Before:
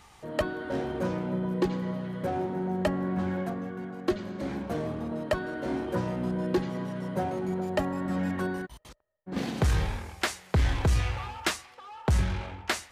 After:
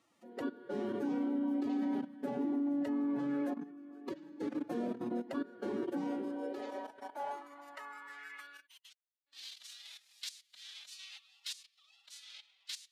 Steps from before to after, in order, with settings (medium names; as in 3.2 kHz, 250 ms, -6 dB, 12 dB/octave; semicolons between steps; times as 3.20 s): level held to a coarse grid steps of 17 dB; formant-preserving pitch shift +7.5 st; high-pass sweep 250 Hz -> 3.8 kHz, 5.80–9.23 s; trim -5.5 dB